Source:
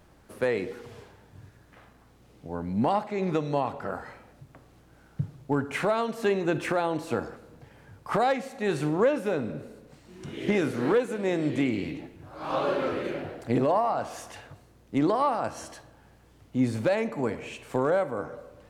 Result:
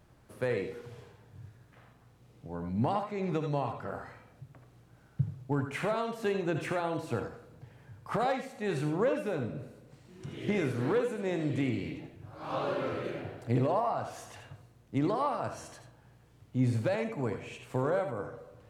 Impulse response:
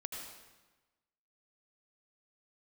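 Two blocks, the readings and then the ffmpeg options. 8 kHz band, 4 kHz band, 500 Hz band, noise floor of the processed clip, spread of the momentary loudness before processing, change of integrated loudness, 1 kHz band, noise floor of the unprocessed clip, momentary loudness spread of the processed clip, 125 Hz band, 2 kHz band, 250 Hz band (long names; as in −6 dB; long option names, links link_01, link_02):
−5.5 dB, −5.5 dB, −5.5 dB, −61 dBFS, 17 LU, −5.0 dB, −5.5 dB, −57 dBFS, 19 LU, +0.5 dB, −5.5 dB, −5.0 dB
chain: -filter_complex "[0:a]equalizer=frequency=120:width_type=o:width=0.58:gain=10[link_01];[1:a]atrim=start_sample=2205,atrim=end_sample=3969[link_02];[link_01][link_02]afir=irnorm=-1:irlink=0,volume=-2.5dB"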